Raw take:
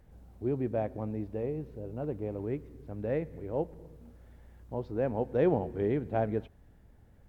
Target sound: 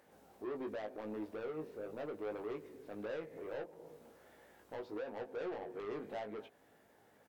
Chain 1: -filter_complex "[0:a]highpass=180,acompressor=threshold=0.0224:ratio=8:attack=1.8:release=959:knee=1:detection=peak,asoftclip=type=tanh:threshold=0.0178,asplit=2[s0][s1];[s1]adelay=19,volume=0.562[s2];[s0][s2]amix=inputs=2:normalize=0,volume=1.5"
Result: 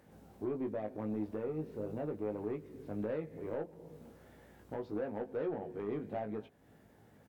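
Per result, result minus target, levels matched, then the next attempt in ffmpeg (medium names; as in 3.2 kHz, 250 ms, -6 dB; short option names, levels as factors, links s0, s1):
saturation: distortion -8 dB; 250 Hz band +3.0 dB
-filter_complex "[0:a]highpass=180,acompressor=threshold=0.0224:ratio=8:attack=1.8:release=959:knee=1:detection=peak,asoftclip=type=tanh:threshold=0.00708,asplit=2[s0][s1];[s1]adelay=19,volume=0.562[s2];[s0][s2]amix=inputs=2:normalize=0,volume=1.5"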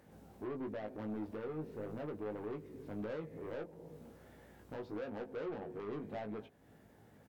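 250 Hz band +3.0 dB
-filter_complex "[0:a]highpass=420,acompressor=threshold=0.0224:ratio=8:attack=1.8:release=959:knee=1:detection=peak,asoftclip=type=tanh:threshold=0.00708,asplit=2[s0][s1];[s1]adelay=19,volume=0.562[s2];[s0][s2]amix=inputs=2:normalize=0,volume=1.5"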